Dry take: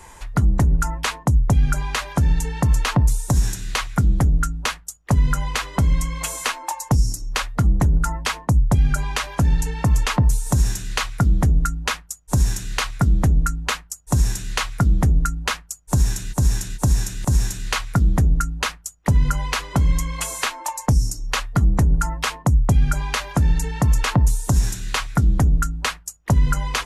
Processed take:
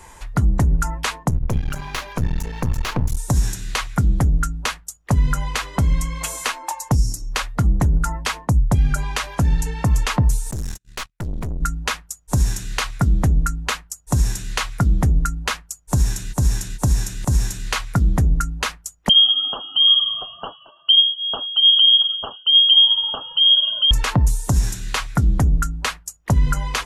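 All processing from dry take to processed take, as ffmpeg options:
-filter_complex "[0:a]asettb=1/sr,asplit=3[s0][s1][s2];[s0]atrim=end=1.294[s3];[s1]atrim=start=1.29:end=3.17,asetpts=PTS-STARTPTS,afade=t=in:d=0.004:c=qsin,afade=t=out:st=1.876:d=0.004:c=qsin,bandreject=f=50:t=h:w=6,bandreject=f=100:t=h:w=6,bandreject=f=150:t=h:w=6,bandreject=f=200:t=h:w=6,bandreject=f=250:t=h:w=6,aeval=exprs='clip(val(0),-1,0.0299)':c=same,equalizer=f=8400:w=3.9:g=-8[s4];[s2]atrim=start=3.166[s5];[s3][s4]acrossfade=d=0.004:c1=hsin:c2=qsin[s6];[s6][s5]acrossfade=d=0.004:c1=qsin:c2=hsin,asettb=1/sr,asplit=3[s7][s8][s9];[s7]atrim=end=10.514[s10];[s8]atrim=start=10.51:end=11.62,asetpts=PTS-STARTPTS,afade=t=in:d=0.004:c=qsin,afade=t=out:st=1.106:d=0.004:c=qsin,agate=range=0.00501:threshold=0.0631:ratio=16:release=100:detection=peak,aeval=exprs='(tanh(15.8*val(0)+0.6)-tanh(0.6))/15.8':c=same[s11];[s9]atrim=start=11.616[s12];[s10][s11]acrossfade=d=0.004:c1=hsin:c2=qsin[s13];[s13][s12]acrossfade=d=0.004:c1=qsin:c2=hsin,asettb=1/sr,asplit=3[s14][s15][s16];[s14]atrim=end=19.094[s17];[s15]atrim=start=19.09:end=23.91,asetpts=PTS-STARTPTS,afade=t=in:d=0.004:c=qsin,afade=t=out:st=4.816:d=0.004:c=qsin,aphaser=in_gain=1:out_gain=1:delay=3.6:decay=0.25:speed=1.1:type=triangular,asuperstop=centerf=1000:order=12:qfactor=0.62,lowpass=f=2800:t=q:w=0.5098,lowpass=f=2800:t=q:w=0.6013,lowpass=f=2800:t=q:w=0.9,lowpass=f=2800:t=q:w=2.563,afreqshift=-3300[s18];[s16]atrim=start=23.906[s19];[s17][s18]acrossfade=d=0.004:c1=hsin:c2=qsin[s20];[s20][s19]acrossfade=d=0.004:c1=qsin:c2=hsin"

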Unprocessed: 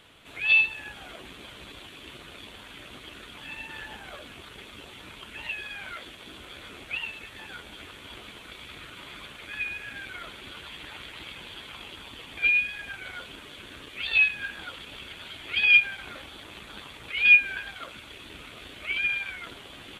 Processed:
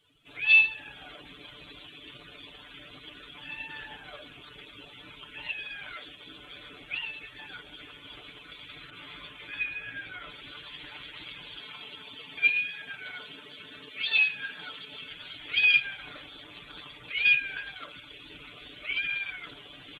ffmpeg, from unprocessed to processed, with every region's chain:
-filter_complex "[0:a]asettb=1/sr,asplit=3[s0][s1][s2];[s0]atrim=end=8.904[s3];[s1]atrim=start=8.9:end=10.3,asetpts=PTS-STARTPTS,afade=t=in:d=0.004:c=qsin,afade=t=out:st=1.396:d=0.004:c=qsin,asplit=2[s4][s5];[s5]adelay=18,volume=0.531[s6];[s4][s6]amix=inputs=2:normalize=0,atrim=end_sample=61740,adynamicequalizer=threshold=0.00631:dfrequency=3000:dqfactor=0.7:tfrequency=3000:tqfactor=0.7:attack=5:release=100:ratio=0.375:range=3:mode=cutabove:tftype=highshelf[s7];[s2]atrim=start=10.296[s8];[s3][s7]acrossfade=d=0.004:c1=hsin:c2=qsin[s9];[s9][s8]acrossfade=d=0.004:c1=qsin:c2=hsin,asettb=1/sr,asplit=3[s10][s11][s12];[s10]atrim=end=11.594[s13];[s11]atrim=start=11.59:end=15.1,asetpts=PTS-STARTPTS,afade=t=in:d=0.004:c=qsin,afade=t=out:st=3.506:d=0.004:c=qsin,highpass=f=73:w=0.5412,highpass=f=73:w=1.3066,aecho=1:1:4.6:0.35,atrim=end_sample=154791[s14];[s12]atrim=start=15.096[s15];[s13][s14]acrossfade=d=0.004:c1=hsin:c2=qsin[s16];[s16][s15]acrossfade=d=0.004:c1=qsin:c2=hsin,afftdn=nr=18:nf=-49,highshelf=f=3500:g=7.5,aecho=1:1:6.8:0.65,volume=0.562"

